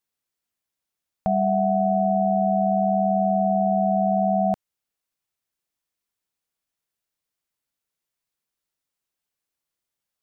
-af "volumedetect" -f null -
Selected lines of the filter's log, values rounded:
mean_volume: -25.6 dB
max_volume: -12.1 dB